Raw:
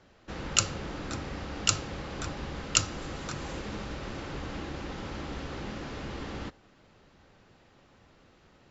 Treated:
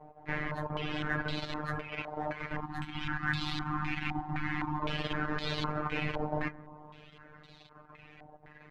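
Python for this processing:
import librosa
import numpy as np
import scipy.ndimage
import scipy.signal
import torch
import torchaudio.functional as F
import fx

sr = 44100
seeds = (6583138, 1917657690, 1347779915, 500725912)

p1 = fx.partial_stretch(x, sr, pct=116)
p2 = (np.kron(p1[::2], np.eye(2)[0]) * 2)[:len(p1)]
p3 = fx.low_shelf(p2, sr, hz=300.0, db=-12.0, at=(1.82, 2.52))
p4 = fx.dereverb_blind(p3, sr, rt60_s=0.69)
p5 = p4 + fx.echo_bbd(p4, sr, ms=131, stages=1024, feedback_pct=64, wet_db=-13.0, dry=0)
p6 = fx.robotise(p5, sr, hz=151.0)
p7 = fx.level_steps(p6, sr, step_db=22)
p8 = p6 + (p7 * 10.0 ** (2.5 / 20.0))
p9 = fx.spec_box(p8, sr, start_s=2.61, length_s=2.19, low_hz=360.0, high_hz=730.0, gain_db=-27)
p10 = fx.rider(p9, sr, range_db=3, speed_s=0.5)
p11 = fx.filter_held_lowpass(p10, sr, hz=3.9, low_hz=780.0, high_hz=3900.0)
y = p11 * 10.0 ** (3.0 / 20.0)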